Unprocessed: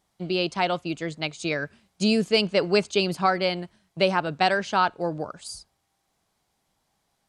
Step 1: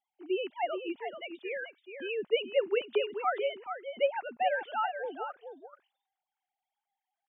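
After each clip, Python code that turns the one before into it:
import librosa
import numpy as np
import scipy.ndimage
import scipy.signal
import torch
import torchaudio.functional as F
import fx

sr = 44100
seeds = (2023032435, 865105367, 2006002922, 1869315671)

y = fx.sine_speech(x, sr)
y = y + 10.0 ** (-8.5 / 20.0) * np.pad(y, (int(431 * sr / 1000.0), 0))[:len(y)]
y = y * librosa.db_to_amplitude(-8.5)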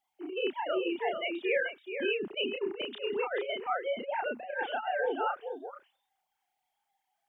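y = fx.over_compress(x, sr, threshold_db=-35.0, ratio=-0.5)
y = fx.doubler(y, sr, ms=32.0, db=-2.5)
y = y * librosa.db_to_amplitude(2.0)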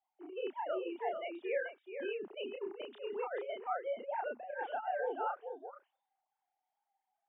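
y = fx.bandpass_q(x, sr, hz=740.0, q=0.96)
y = y * librosa.db_to_amplitude(-3.5)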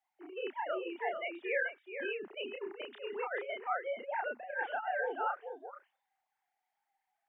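y = fx.peak_eq(x, sr, hz=1900.0, db=11.5, octaves=1.1)
y = y * librosa.db_to_amplitude(-1.0)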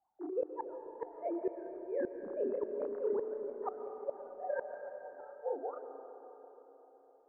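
y = scipy.signal.sosfilt(scipy.signal.bessel(8, 730.0, 'lowpass', norm='mag', fs=sr, output='sos'), x)
y = fx.gate_flip(y, sr, shuts_db=-34.0, range_db=-28)
y = fx.rev_freeverb(y, sr, rt60_s=4.2, hf_ratio=0.45, predelay_ms=80, drr_db=6.5)
y = y * librosa.db_to_amplitude(9.5)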